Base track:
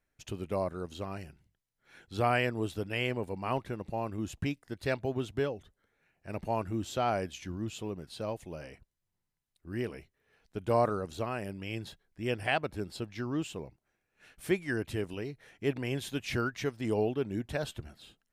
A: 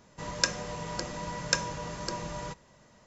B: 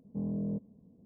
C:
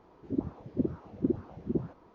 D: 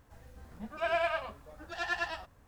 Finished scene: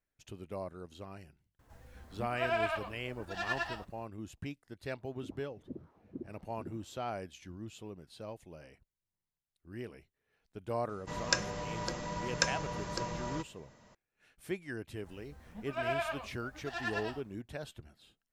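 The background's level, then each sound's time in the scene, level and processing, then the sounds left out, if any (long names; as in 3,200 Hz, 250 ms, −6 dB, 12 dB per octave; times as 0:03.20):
base track −8.5 dB
0:01.59: mix in D −2 dB
0:04.91: mix in C −15.5 dB
0:10.89: mix in A −1.5 dB + high-shelf EQ 6,000 Hz −5 dB
0:14.95: mix in D −4 dB
not used: B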